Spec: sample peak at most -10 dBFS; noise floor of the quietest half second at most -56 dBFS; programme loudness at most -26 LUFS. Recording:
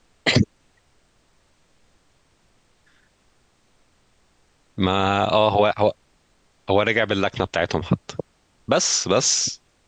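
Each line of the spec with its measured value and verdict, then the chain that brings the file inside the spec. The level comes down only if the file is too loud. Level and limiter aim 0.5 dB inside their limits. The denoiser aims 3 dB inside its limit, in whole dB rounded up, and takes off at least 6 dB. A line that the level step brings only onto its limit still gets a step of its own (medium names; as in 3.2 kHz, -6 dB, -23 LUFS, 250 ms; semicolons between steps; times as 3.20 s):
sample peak -6.0 dBFS: fail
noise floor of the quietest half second -62 dBFS: pass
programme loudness -20.5 LUFS: fail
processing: trim -6 dB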